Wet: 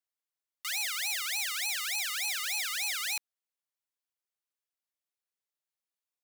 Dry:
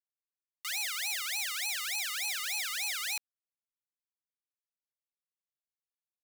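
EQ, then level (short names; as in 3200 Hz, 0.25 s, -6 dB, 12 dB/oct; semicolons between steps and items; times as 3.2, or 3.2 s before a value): HPF 390 Hz 12 dB/oct; +1.5 dB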